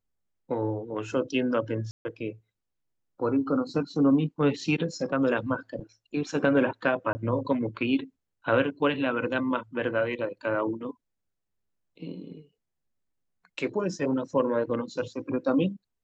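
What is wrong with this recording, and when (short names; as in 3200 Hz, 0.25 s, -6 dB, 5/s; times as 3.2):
1.91–2.05 gap 0.14 s
7.13–7.15 gap 20 ms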